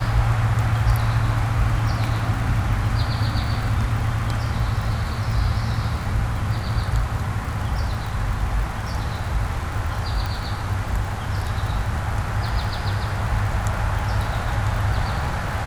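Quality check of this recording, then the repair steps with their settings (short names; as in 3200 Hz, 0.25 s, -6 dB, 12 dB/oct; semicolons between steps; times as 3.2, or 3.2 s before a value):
crackle 53/s -29 dBFS
10.26 pop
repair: de-click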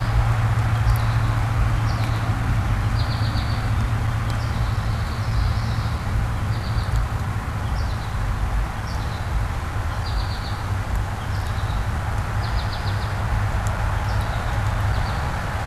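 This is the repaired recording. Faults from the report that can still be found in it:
none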